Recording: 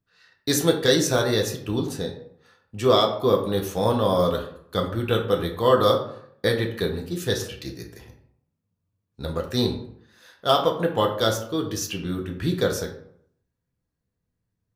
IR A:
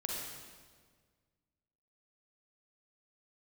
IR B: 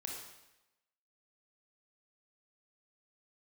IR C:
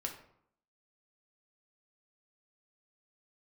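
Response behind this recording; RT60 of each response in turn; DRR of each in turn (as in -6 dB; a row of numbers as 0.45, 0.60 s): C; 1.7, 0.95, 0.70 s; -2.5, -1.0, 1.0 dB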